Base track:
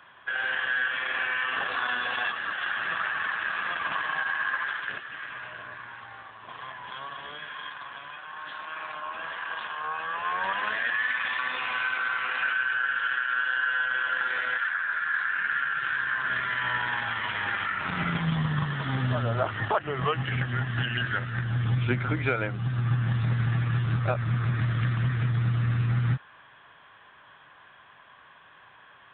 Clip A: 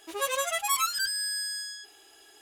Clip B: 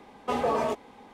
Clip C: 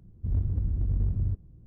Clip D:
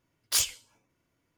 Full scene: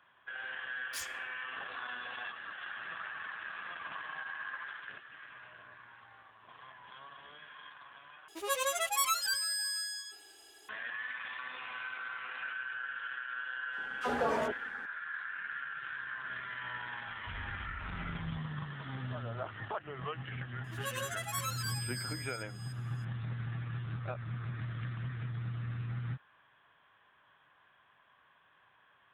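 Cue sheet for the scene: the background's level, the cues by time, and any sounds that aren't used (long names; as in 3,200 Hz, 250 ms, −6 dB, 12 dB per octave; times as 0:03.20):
base track −13 dB
0:00.61: mix in D −17 dB
0:08.28: overwrite with A −3.5 dB + repeating echo 338 ms, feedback 38%, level −20 dB
0:13.73: mix in B −5.5 dB + all-pass dispersion lows, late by 52 ms, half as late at 1,100 Hz
0:17.03: mix in C −16 dB + gain into a clipping stage and back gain 25.5 dB
0:20.64: mix in A −11 dB + delay that plays each chunk backwards 298 ms, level −8.5 dB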